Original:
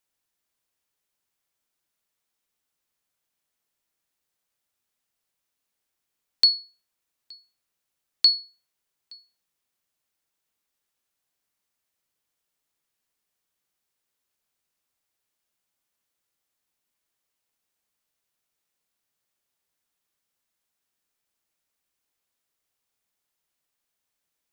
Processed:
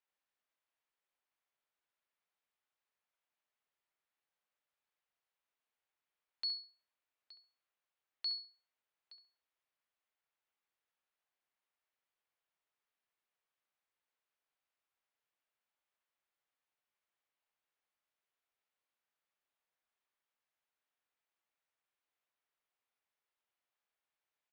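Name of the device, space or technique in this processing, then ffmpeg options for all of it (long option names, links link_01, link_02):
DJ mixer with the lows and highs turned down: -filter_complex "[0:a]acrossover=split=460 3500:gain=0.251 1 0.141[link_01][link_02][link_03];[link_01][link_02][link_03]amix=inputs=3:normalize=0,alimiter=level_in=0.5dB:limit=-24dB:level=0:latency=1:release=83,volume=-0.5dB,asplit=2[link_04][link_05];[link_05]adelay=68,lowpass=frequency=1300:poles=1,volume=-5.5dB,asplit=2[link_06][link_07];[link_07]adelay=68,lowpass=frequency=1300:poles=1,volume=0.38,asplit=2[link_08][link_09];[link_09]adelay=68,lowpass=frequency=1300:poles=1,volume=0.38,asplit=2[link_10][link_11];[link_11]adelay=68,lowpass=frequency=1300:poles=1,volume=0.38,asplit=2[link_12][link_13];[link_13]adelay=68,lowpass=frequency=1300:poles=1,volume=0.38[link_14];[link_04][link_06][link_08][link_10][link_12][link_14]amix=inputs=6:normalize=0,volume=-5dB"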